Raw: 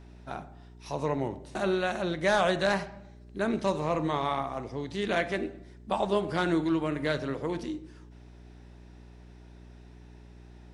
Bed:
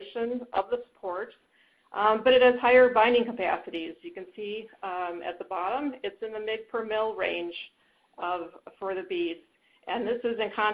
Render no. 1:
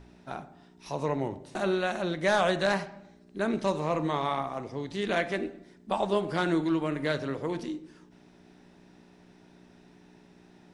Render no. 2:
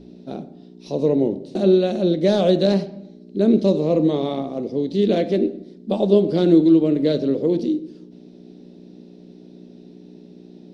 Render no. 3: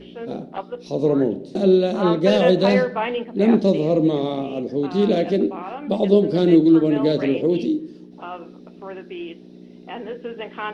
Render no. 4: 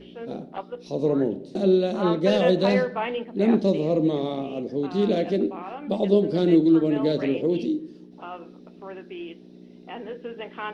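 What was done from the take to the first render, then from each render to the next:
de-hum 60 Hz, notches 2
FFT filter 110 Hz 0 dB, 200 Hz +15 dB, 510 Hz +13 dB, 950 Hz -8 dB, 1.7 kHz -10 dB, 4.2 kHz +8 dB, 7.8 kHz -6 dB
add bed -3 dB
trim -4 dB

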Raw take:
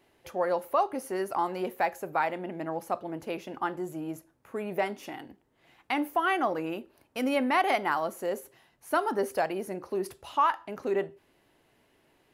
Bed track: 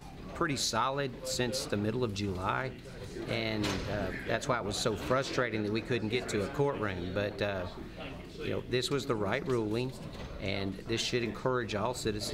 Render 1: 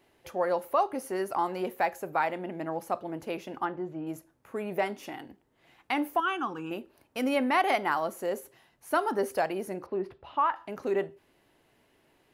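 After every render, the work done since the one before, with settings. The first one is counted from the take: 3.65–4.07 s: distance through air 280 m; 6.20–6.71 s: static phaser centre 3 kHz, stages 8; 9.86–10.56 s: distance through air 380 m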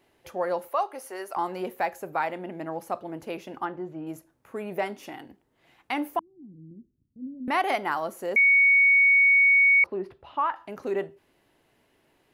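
0.69–1.37 s: high-pass 530 Hz; 6.19–7.48 s: inverse Chebyshev low-pass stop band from 1.3 kHz, stop band 80 dB; 8.36–9.84 s: bleep 2.23 kHz -15 dBFS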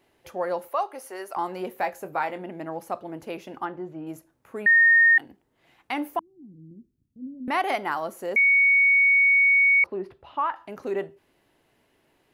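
1.73–2.42 s: doubling 21 ms -10 dB; 4.66–5.18 s: bleep 1.84 kHz -13 dBFS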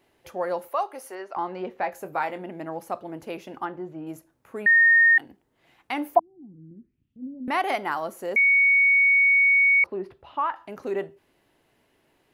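1.15–1.92 s: distance through air 160 m; 6.15–7.47 s: touch-sensitive low-pass 740–3400 Hz down, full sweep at -36 dBFS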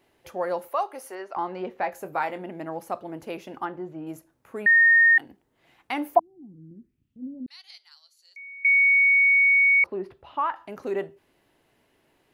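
7.46–8.65 s: ladder band-pass 4.6 kHz, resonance 80%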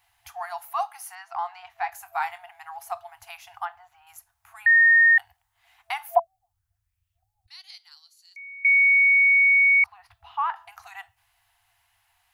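FFT band-reject 110–670 Hz; treble shelf 5.6 kHz +7 dB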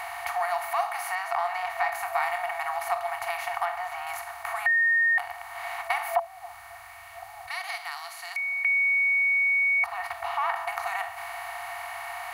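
spectral levelling over time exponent 0.4; compression 1.5:1, threshold -33 dBFS, peak gain reduction 8 dB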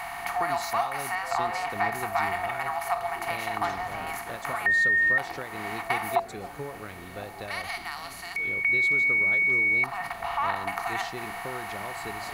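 add bed track -7.5 dB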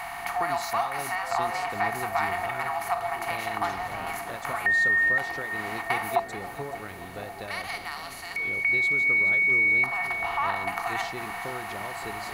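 two-band feedback delay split 760 Hz, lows 567 ms, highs 426 ms, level -13 dB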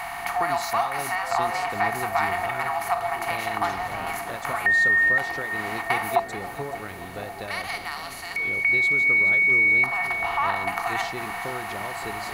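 trim +3 dB

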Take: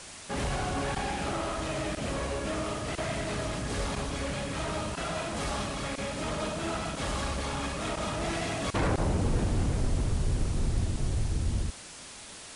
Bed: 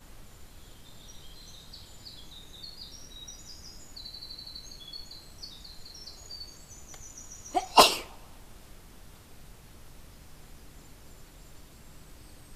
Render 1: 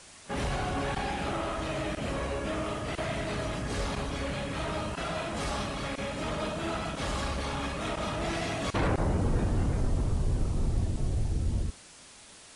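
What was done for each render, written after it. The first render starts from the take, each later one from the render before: noise print and reduce 6 dB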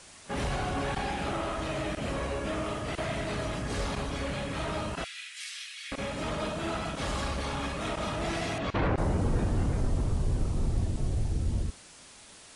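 5.04–5.92 s: steep high-pass 1.9 kHz; 8.58–8.98 s: low-pass 3.5 kHz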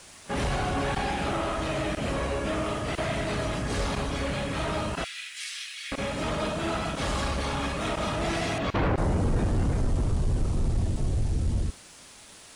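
waveshaping leveller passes 1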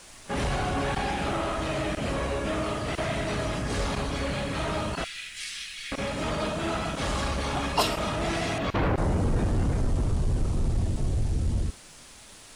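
add bed -8 dB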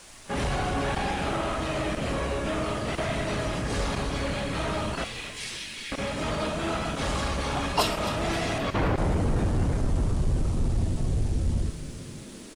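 frequency-shifting echo 262 ms, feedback 61%, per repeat -94 Hz, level -13 dB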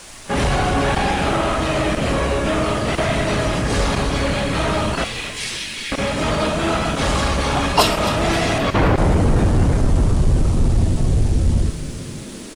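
trim +9.5 dB

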